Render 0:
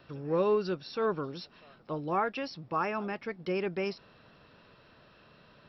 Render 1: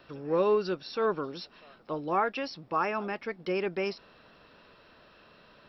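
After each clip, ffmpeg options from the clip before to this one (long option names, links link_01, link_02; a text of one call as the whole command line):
ffmpeg -i in.wav -af "equalizer=frequency=120:width=1.1:gain=-8.5,volume=2.5dB" out.wav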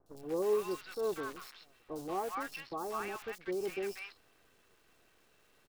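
ffmpeg -i in.wav -filter_complex "[0:a]aecho=1:1:2.6:0.43,acrusher=bits=7:dc=4:mix=0:aa=0.000001,acrossover=split=1000|4200[link_01][link_02][link_03];[link_03]adelay=60[link_04];[link_02]adelay=190[link_05];[link_01][link_05][link_04]amix=inputs=3:normalize=0,volume=-7.5dB" out.wav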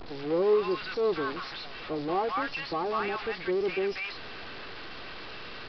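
ffmpeg -i in.wav -af "aeval=exprs='val(0)+0.5*0.00944*sgn(val(0))':channel_layout=same,aresample=11025,aresample=44100,volume=6dB" out.wav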